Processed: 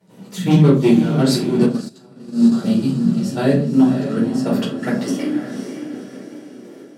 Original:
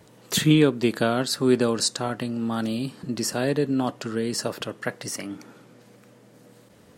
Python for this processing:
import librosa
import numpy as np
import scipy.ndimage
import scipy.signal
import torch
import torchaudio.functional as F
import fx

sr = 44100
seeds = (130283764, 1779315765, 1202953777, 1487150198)

y = fx.clip_asym(x, sr, top_db=-19.5, bottom_db=-12.0)
y = fx.step_gate(y, sr, bpm=165, pattern='.xx..x.x.x..', floor_db=-12.0, edge_ms=4.5)
y = fx.filter_sweep_highpass(y, sr, from_hz=180.0, to_hz=370.0, start_s=4.7, end_s=5.46, q=7.2)
y = fx.echo_diffused(y, sr, ms=537, feedback_pct=45, wet_db=-8)
y = fx.room_shoebox(y, sr, seeds[0], volume_m3=220.0, walls='furnished', distance_m=4.5)
y = fx.upward_expand(y, sr, threshold_db=-19.0, expansion=2.5, at=(1.66, 2.52))
y = F.gain(torch.from_numpy(y), -4.0).numpy()